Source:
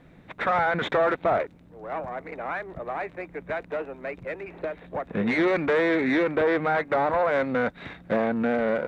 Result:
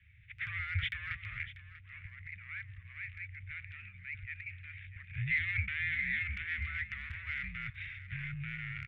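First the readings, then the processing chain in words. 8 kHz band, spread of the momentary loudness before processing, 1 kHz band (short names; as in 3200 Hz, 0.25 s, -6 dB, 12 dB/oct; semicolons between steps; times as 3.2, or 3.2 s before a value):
n/a, 13 LU, -28.5 dB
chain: mistuned SSB -82 Hz 150–3100 Hz; bell 2100 Hz +5 dB 1.1 oct; transient shaper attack -2 dB, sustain +7 dB; elliptic band-stop 110–2200 Hz, stop band 50 dB; on a send: echo 0.641 s -15 dB; on the sum: gain -3.5 dB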